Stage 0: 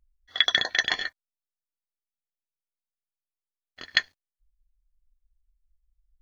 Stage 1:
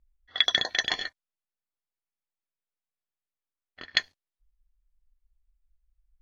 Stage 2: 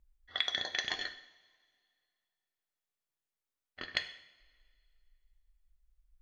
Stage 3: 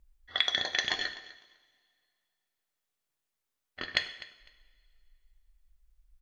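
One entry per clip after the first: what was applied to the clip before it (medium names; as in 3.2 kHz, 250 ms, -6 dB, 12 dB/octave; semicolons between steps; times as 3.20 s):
level-controlled noise filter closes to 2.8 kHz, open at -23.5 dBFS; dynamic bell 1.6 kHz, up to -5 dB, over -36 dBFS, Q 1.4
compression 3:1, threshold -33 dBFS, peak gain reduction 12.5 dB; two-slope reverb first 0.7 s, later 2.3 s, from -19 dB, DRR 7.5 dB
feedback delay 252 ms, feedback 19%, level -18 dB; trim +5 dB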